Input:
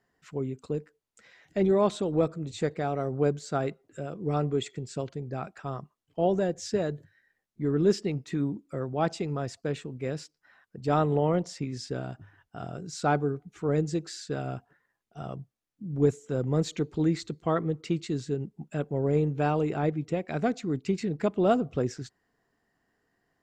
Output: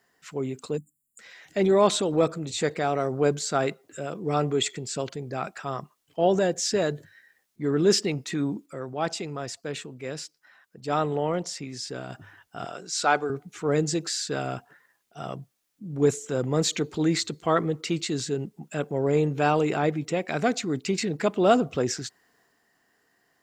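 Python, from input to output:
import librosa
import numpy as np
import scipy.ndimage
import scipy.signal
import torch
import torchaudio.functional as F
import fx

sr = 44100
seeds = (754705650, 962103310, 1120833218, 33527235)

y = fx.spec_erase(x, sr, start_s=0.77, length_s=0.42, low_hz=290.0, high_hz=6900.0)
y = fx.weighting(y, sr, curve='A', at=(12.65, 13.3))
y = fx.edit(y, sr, fx.clip_gain(start_s=8.66, length_s=3.44, db=-5.0), tone=tone)
y = fx.tilt_eq(y, sr, slope=2.0)
y = fx.transient(y, sr, attack_db=-2, sustain_db=3)
y = fx.low_shelf(y, sr, hz=92.0, db=-5.5)
y = F.gain(torch.from_numpy(y), 6.5).numpy()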